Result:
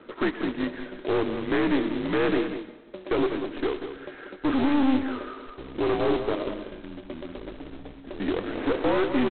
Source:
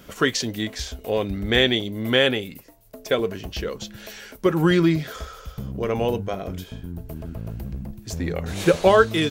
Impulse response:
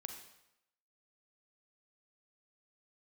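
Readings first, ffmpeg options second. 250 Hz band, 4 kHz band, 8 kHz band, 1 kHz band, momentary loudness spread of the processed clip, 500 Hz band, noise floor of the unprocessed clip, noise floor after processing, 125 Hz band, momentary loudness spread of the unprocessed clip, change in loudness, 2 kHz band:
-0.5 dB, -13.0 dB, under -40 dB, -4.0 dB, 17 LU, -4.5 dB, -47 dBFS, -46 dBFS, -12.0 dB, 18 LU, -4.5 dB, -7.0 dB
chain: -filter_complex "[0:a]lowpass=f=1900:w=0.5412,lowpass=f=1900:w=1.3066,lowshelf=f=260:t=q:w=3:g=-10.5,alimiter=limit=0.266:level=0:latency=1:release=16,afreqshift=-66,aeval=exprs='(tanh(8.91*val(0)+0.25)-tanh(0.25))/8.91':c=same,aresample=8000,acrusher=bits=2:mode=log:mix=0:aa=0.000001,aresample=44100,aecho=1:1:190:0.335,asplit=2[s0][s1];[1:a]atrim=start_sample=2205,asetrate=25578,aresample=44100,adelay=114[s2];[s1][s2]afir=irnorm=-1:irlink=0,volume=0.178[s3];[s0][s3]amix=inputs=2:normalize=0"

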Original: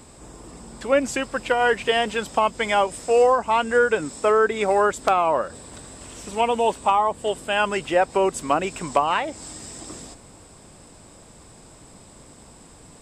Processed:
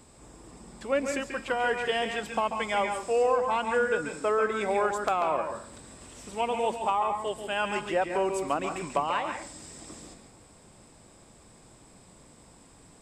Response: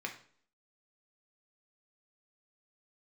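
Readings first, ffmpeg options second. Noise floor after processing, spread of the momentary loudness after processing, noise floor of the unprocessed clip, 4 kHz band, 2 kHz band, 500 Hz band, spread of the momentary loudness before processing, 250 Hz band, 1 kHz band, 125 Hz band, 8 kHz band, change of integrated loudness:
-55 dBFS, 17 LU, -48 dBFS, -7.5 dB, -6.5 dB, -7.0 dB, 17 LU, -6.5 dB, -7.0 dB, -6.5 dB, -8.0 dB, -7.0 dB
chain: -filter_complex "[0:a]asplit=2[s0][s1];[1:a]atrim=start_sample=2205,adelay=138[s2];[s1][s2]afir=irnorm=-1:irlink=0,volume=0.531[s3];[s0][s3]amix=inputs=2:normalize=0,volume=0.398"

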